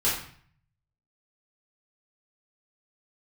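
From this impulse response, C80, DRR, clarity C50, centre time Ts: 7.5 dB, -9.0 dB, 3.5 dB, 43 ms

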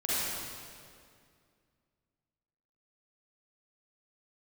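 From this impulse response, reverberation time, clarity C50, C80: 2.2 s, -7.5 dB, -3.5 dB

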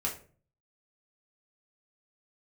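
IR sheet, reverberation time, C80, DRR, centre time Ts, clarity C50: 0.40 s, 14.5 dB, -2.0 dB, 20 ms, 9.5 dB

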